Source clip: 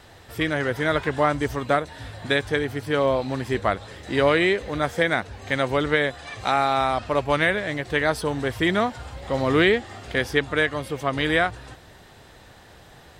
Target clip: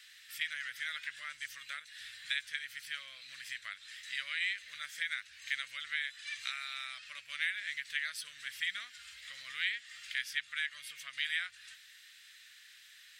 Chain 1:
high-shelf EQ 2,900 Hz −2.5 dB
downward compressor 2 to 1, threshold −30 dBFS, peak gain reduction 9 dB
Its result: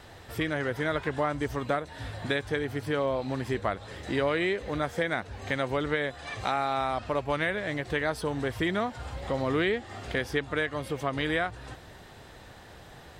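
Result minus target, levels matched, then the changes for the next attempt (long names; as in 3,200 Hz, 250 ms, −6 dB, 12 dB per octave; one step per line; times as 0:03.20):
1,000 Hz band +13.5 dB
add after downward compressor: inverse Chebyshev high-pass filter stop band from 940 Hz, stop band 40 dB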